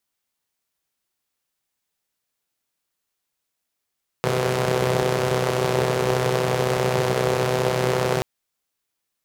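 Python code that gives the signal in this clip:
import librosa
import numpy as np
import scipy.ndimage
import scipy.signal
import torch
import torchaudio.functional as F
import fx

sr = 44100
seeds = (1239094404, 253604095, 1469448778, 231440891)

y = fx.engine_four(sr, seeds[0], length_s=3.98, rpm=3800, resonances_hz=(160.0, 420.0))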